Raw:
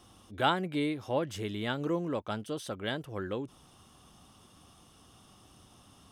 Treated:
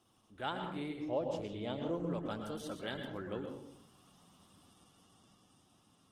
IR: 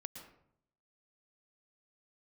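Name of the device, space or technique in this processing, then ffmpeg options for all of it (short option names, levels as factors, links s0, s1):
far-field microphone of a smart speaker: -filter_complex "[0:a]asettb=1/sr,asplit=3[s0][s1][s2];[s0]atrim=end=0.964[s3];[s1]atrim=start=0.96:end=1.94,asetpts=PTS-STARTPTS,afade=t=in:d=0.004:c=qsin,afade=t=out:st=0.976:d=0.004:c=qsin,equalizer=f=630:t=o:w=0.67:g=7,equalizer=f=1600:t=o:w=0.67:g=-11,equalizer=f=10000:t=o:w=0.67:g=-9[s4];[s2]atrim=start=1.936[s5];[s3][s4]acrossfade=d=0.004:c1=hsin:c2=qsin[s6];[s6][s5]acrossfade=d=0.004:c1=qsin:c2=hsin[s7];[1:a]atrim=start_sample=2205[s8];[s7][s8]afir=irnorm=-1:irlink=0,highpass=100,dynaudnorm=f=200:g=11:m=1.68,volume=0.473" -ar 48000 -c:a libopus -b:a 16k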